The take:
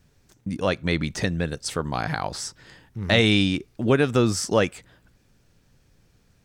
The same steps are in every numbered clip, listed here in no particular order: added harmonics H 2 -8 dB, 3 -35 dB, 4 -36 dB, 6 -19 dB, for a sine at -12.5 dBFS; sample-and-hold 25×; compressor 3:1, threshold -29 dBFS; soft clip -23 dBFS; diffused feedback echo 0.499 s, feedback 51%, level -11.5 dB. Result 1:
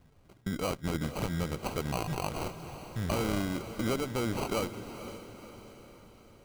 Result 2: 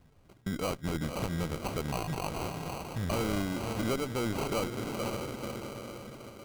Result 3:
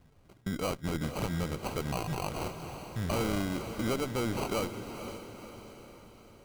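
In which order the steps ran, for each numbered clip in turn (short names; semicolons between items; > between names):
compressor > soft clip > added harmonics > sample-and-hold > diffused feedback echo; diffused feedback echo > compressor > sample-and-hold > added harmonics > soft clip; sample-and-hold > compressor > added harmonics > diffused feedback echo > soft clip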